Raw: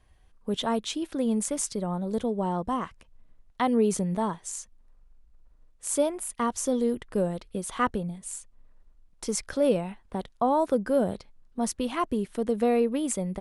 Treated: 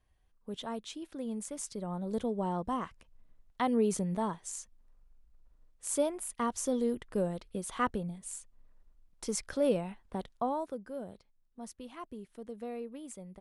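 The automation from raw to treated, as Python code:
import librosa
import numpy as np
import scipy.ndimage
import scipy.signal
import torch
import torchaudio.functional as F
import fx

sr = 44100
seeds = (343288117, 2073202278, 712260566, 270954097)

y = fx.gain(x, sr, db=fx.line((1.5, -11.5), (2.12, -5.0), (10.34, -5.0), (10.81, -17.0)))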